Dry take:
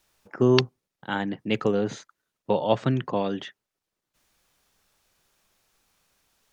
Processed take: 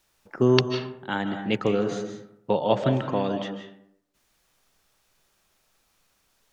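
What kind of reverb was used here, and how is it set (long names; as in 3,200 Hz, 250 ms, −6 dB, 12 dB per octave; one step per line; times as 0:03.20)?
comb and all-pass reverb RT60 0.72 s, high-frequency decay 0.5×, pre-delay 115 ms, DRR 6.5 dB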